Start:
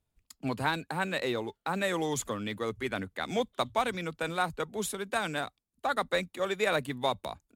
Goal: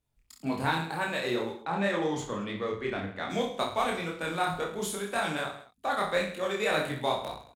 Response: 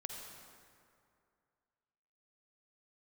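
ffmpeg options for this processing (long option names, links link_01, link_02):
-filter_complex "[0:a]flanger=delay=19:depth=6.1:speed=1.9,aecho=1:1:30|66|109.2|161|223.2:0.631|0.398|0.251|0.158|0.1,asplit=3[link_01][link_02][link_03];[link_01]afade=type=out:start_time=1.64:duration=0.02[link_04];[link_02]adynamicsmooth=sensitivity=2.5:basefreq=4300,afade=type=in:start_time=1.64:duration=0.02,afade=type=out:start_time=3.29:duration=0.02[link_05];[link_03]afade=type=in:start_time=3.29:duration=0.02[link_06];[link_04][link_05][link_06]amix=inputs=3:normalize=0,volume=2dB"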